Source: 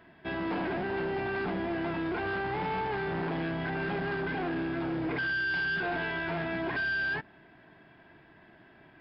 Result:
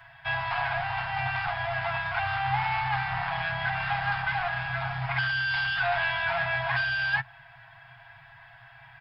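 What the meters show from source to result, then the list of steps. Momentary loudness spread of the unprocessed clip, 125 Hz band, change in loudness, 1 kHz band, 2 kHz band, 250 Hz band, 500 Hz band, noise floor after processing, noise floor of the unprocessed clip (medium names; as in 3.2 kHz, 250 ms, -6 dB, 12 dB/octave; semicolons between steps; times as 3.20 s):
4 LU, +4.5 dB, +4.0 dB, +7.0 dB, +5.0 dB, under -10 dB, -3.0 dB, -52 dBFS, -58 dBFS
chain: Chebyshev band-stop 130–730 Hz, order 4; comb 7.3 ms, depth 57%; trim +7.5 dB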